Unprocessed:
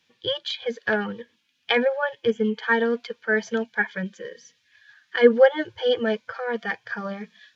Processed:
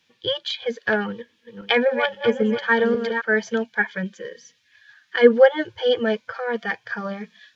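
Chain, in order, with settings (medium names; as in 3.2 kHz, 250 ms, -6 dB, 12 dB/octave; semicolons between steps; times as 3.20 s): 1.08–3.22 s: backward echo that repeats 267 ms, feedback 51%, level -7 dB; trim +2 dB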